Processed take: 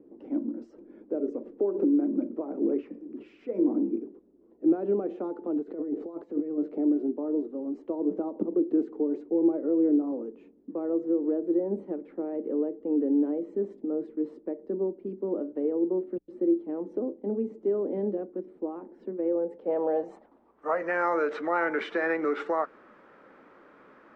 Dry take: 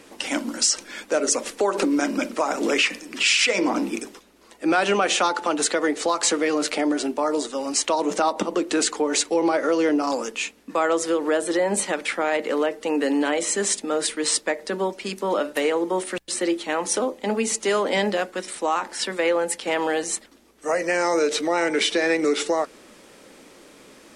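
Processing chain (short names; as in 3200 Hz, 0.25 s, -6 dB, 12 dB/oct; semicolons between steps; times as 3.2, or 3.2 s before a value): low shelf 90 Hz -8.5 dB; 5.52–6.58 negative-ratio compressor -28 dBFS, ratio -1; low-pass sweep 350 Hz -> 1400 Hz, 19.23–20.9; gain -7 dB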